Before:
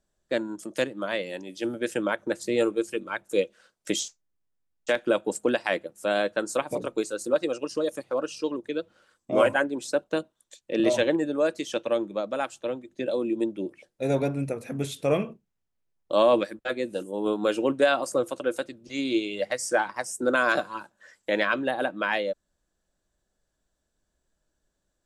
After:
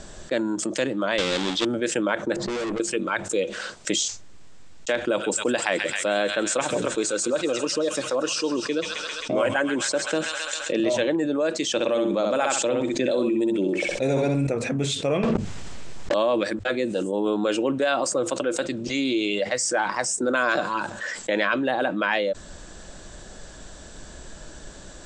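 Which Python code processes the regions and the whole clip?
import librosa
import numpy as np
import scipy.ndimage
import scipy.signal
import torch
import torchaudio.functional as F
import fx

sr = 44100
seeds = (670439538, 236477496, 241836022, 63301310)

y = fx.chain(x, sr, fx.halfwave_hold(),
    fx.peak_eq(hz=3500.0, db=11.5, octaves=0.51), at=(1.18, 1.65))
y = fx.chain(y, sr, fx.env_lowpass(base_hz=690.0, full_db=-24.0),
    fx.tube_stage(drive_db=40.0, bias=0.55),
    fx.env_flatten(amount_pct=70), at=(2.36, 2.8))
y = fx.chain(y, sr, fx.high_shelf(hz=9700.0, db=6.5),
    fx.echo_wet_highpass(ms=133, feedback_pct=69, hz=1700.0, wet_db=-10.0), at=(5.05, 10.84))
y = fx.chain(y, sr, fx.high_shelf(hz=10000.0, db=11.5),
    fx.echo_feedback(ms=64, feedback_pct=17, wet_db=-6),
    fx.env_flatten(amount_pct=50), at=(11.74, 14.47))
y = fx.chain(y, sr, fx.leveller(passes=5),
    fx.env_flatten(amount_pct=100), at=(15.23, 16.14))
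y = scipy.signal.sosfilt(scipy.signal.ellip(4, 1.0, 70, 8000.0, 'lowpass', fs=sr, output='sos'), y)
y = fx.hum_notches(y, sr, base_hz=50, count=2)
y = fx.env_flatten(y, sr, amount_pct=70)
y = F.gain(torch.from_numpy(y), -3.0).numpy()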